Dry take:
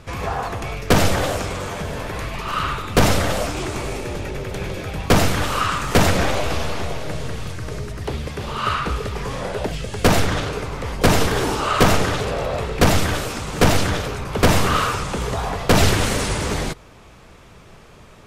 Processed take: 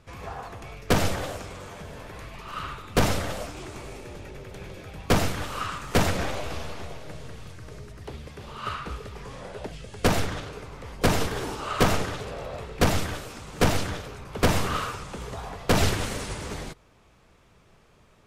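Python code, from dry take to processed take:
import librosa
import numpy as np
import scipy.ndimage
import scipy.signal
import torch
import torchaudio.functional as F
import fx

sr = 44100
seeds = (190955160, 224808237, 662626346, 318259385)

y = fx.lowpass(x, sr, hz=12000.0, slope=24, at=(9.22, 10.06))
y = fx.upward_expand(y, sr, threshold_db=-25.0, expansion=1.5)
y = y * 10.0 ** (-5.5 / 20.0)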